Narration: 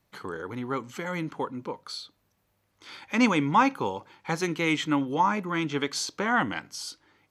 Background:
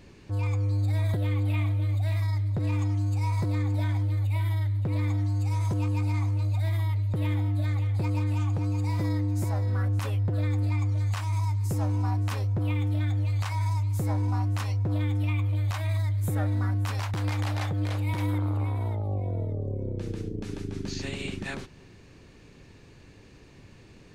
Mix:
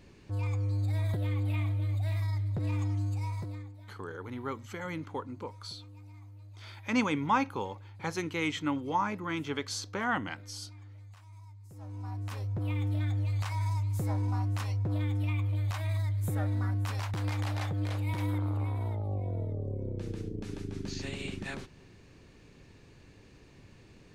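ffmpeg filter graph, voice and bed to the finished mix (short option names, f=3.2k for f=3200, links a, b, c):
-filter_complex "[0:a]adelay=3750,volume=-6dB[a];[1:a]volume=15dB,afade=t=out:st=3.02:d=0.73:silence=0.112202,afade=t=in:st=11.71:d=1.15:silence=0.105925[b];[a][b]amix=inputs=2:normalize=0"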